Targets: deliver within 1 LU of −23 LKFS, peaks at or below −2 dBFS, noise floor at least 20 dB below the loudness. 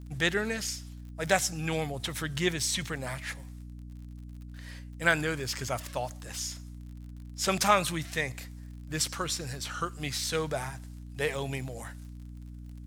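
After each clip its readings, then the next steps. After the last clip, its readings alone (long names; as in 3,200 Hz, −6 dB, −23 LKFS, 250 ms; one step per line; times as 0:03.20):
crackle rate 43 per second; mains hum 60 Hz; hum harmonics up to 300 Hz; level of the hum −41 dBFS; integrated loudness −31.0 LKFS; sample peak −8.0 dBFS; target loudness −23.0 LKFS
→ click removal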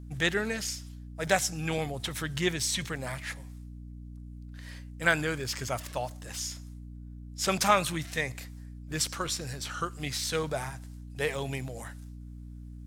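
crackle rate 0.39 per second; mains hum 60 Hz; hum harmonics up to 300 Hz; level of the hum −41 dBFS
→ mains-hum notches 60/120/180/240/300 Hz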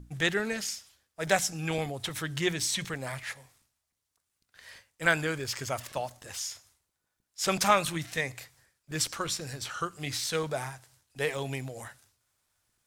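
mains hum none found; integrated loudness −31.0 LKFS; sample peak −8.0 dBFS; target loudness −23.0 LKFS
→ level +8 dB
brickwall limiter −2 dBFS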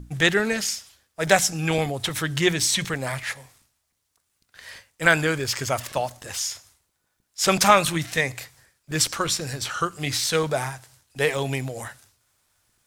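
integrated loudness −23.5 LKFS; sample peak −2.0 dBFS; background noise floor −75 dBFS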